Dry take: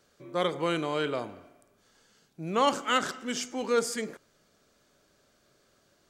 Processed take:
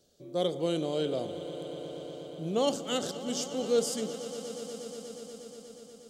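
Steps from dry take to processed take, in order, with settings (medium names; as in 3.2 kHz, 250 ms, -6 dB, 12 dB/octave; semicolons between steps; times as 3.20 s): high-order bell 1.5 kHz -15 dB; echo with a slow build-up 120 ms, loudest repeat 5, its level -16.5 dB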